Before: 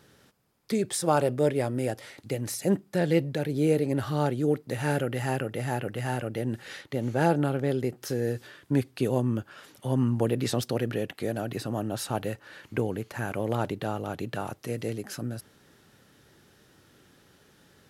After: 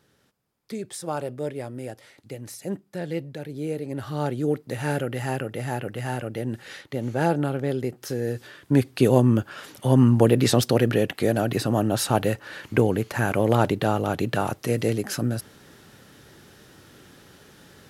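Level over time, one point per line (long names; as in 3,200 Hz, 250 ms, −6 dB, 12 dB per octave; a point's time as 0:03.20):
0:03.79 −6 dB
0:04.35 +1 dB
0:08.26 +1 dB
0:09.05 +8.5 dB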